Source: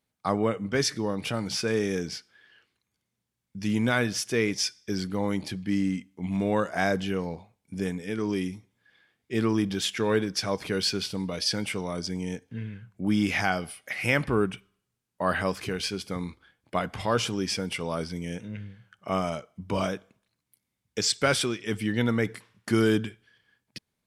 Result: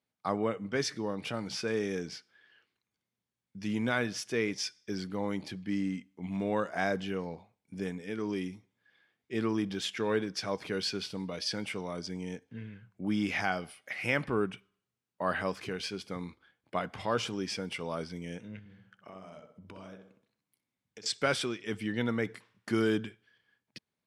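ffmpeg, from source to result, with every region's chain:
-filter_complex "[0:a]asettb=1/sr,asplit=3[s0][s1][s2];[s0]atrim=end=18.594[s3];[s1]atrim=start=18.59:end=21.06,asetpts=PTS-STARTPTS,afade=t=in:d=0.004:c=qsin,afade=t=out:st=2.466:d=0.004:c=qsin,acompressor=threshold=0.01:ratio=8:attack=3.2:release=140:knee=1:detection=peak,asplit=2[s4][s5];[s5]adelay=63,lowpass=f=1600:p=1,volume=0.596,asplit=2[s6][s7];[s7]adelay=63,lowpass=f=1600:p=1,volume=0.42,asplit=2[s8][s9];[s9]adelay=63,lowpass=f=1600:p=1,volume=0.42,asplit=2[s10][s11];[s11]adelay=63,lowpass=f=1600:p=1,volume=0.42,asplit=2[s12][s13];[s13]adelay=63,lowpass=f=1600:p=1,volume=0.42[s14];[s4][s6][s8][s10][s12][s14]amix=inputs=6:normalize=0,atrim=end_sample=108927[s15];[s2]atrim=start=21.056[s16];[s3][s15]acrossfade=d=0.004:c1=hsin:c2=qsin[s17];[s17][s16]acrossfade=d=0.004:c1=qsin:c2=hsin,highpass=f=150:p=1,highshelf=f=8100:g=-11,volume=0.596"

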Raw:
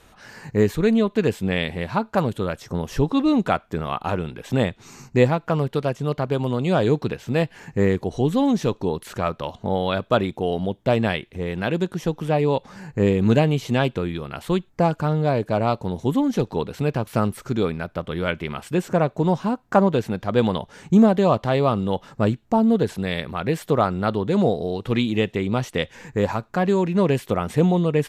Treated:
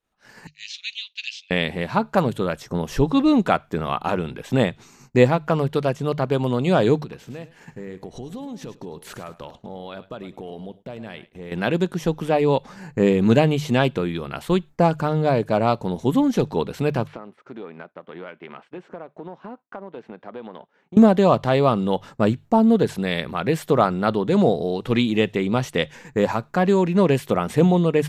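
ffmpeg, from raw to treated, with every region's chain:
-filter_complex "[0:a]asettb=1/sr,asplit=3[s0][s1][s2];[s0]atrim=end=0.474[s3];[s1]atrim=start=0.47:end=1.51,asetpts=PTS-STARTPTS,afade=t=in:d=0.004:c=qsin,afade=t=out:st=1.036:d=0.004:c=qsin,asuperpass=centerf=4000:order=8:qfactor=1.1,acontrast=48[s4];[s2]atrim=start=1.506[s5];[s3][s4]acrossfade=d=0.004:c1=hsin:c2=qsin[s6];[s6][s5]acrossfade=d=0.004:c1=qsin:c2=hsin,asettb=1/sr,asplit=3[s7][s8][s9];[s7]atrim=end=6.974[s10];[s8]atrim=start=6.97:end=11.52,asetpts=PTS-STARTPTS,afade=t=in:d=0.004:c=qsin,afade=t=out:st=4.546:d=0.004:c=qsin,acompressor=threshold=0.0251:ratio=10:attack=3.2:release=140:knee=1:detection=peak,aecho=1:1:106|212|318:0.211|0.0761|0.0274,atrim=end_sample=200655[s11];[s9]atrim=start=11.516[s12];[s10][s11]acrossfade=d=0.004:c1=hsin:c2=qsin[s13];[s13][s12]acrossfade=d=0.004:c1=qsin:c2=hsin,asettb=1/sr,asplit=3[s14][s15][s16];[s14]atrim=end=17.074[s17];[s15]atrim=start=17.07:end=20.97,asetpts=PTS-STARTPTS,afade=t=in:d=0.004:c=qsin,afade=t=out:st=3.896:d=0.004:c=qsin,aeval=exprs='if(lt(val(0),0),0.708*val(0),val(0))':c=same,highpass=270,lowpass=2400,acompressor=threshold=0.0224:ratio=8:attack=3.2:release=140:knee=1:detection=peak[s18];[s16]atrim=start=20.966[s19];[s17][s18]acrossfade=d=0.004:c1=hsin:c2=qsin[s20];[s20][s19]acrossfade=d=0.004:c1=qsin:c2=hsin,equalizer=f=91:t=o:w=0.39:g=-9.5,bandreject=f=50:t=h:w=6,bandreject=f=100:t=h:w=6,bandreject=f=150:t=h:w=6,agate=range=0.0224:threshold=0.0158:ratio=3:detection=peak,volume=1.26"

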